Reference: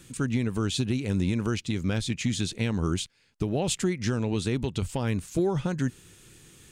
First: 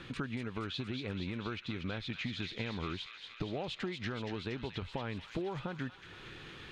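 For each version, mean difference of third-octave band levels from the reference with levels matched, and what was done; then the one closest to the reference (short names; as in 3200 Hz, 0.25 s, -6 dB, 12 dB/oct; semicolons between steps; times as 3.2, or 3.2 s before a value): 8.0 dB: EQ curve 190 Hz 0 dB, 1200 Hz +10 dB, 4000 Hz +3 dB, 8100 Hz -24 dB; compressor 6:1, threshold -38 dBFS, peak gain reduction 18 dB; on a send: thin delay 0.235 s, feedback 72%, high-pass 2000 Hz, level -5 dB; on the sum: gain +1.5 dB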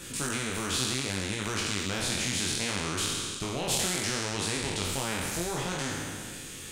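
14.0 dB: spectral trails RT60 1.26 s; chorus 0.66 Hz, delay 19 ms, depth 4.6 ms; spectral compressor 2:1; gain +2 dB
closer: first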